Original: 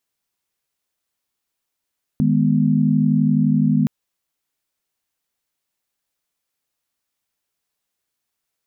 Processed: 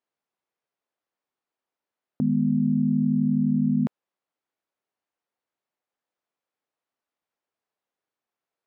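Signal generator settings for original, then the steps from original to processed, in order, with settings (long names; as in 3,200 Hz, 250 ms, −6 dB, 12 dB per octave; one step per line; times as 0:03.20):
held notes D#3/G#3/B3 sine, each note −18 dBFS 1.67 s
resonant band-pass 600 Hz, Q 0.62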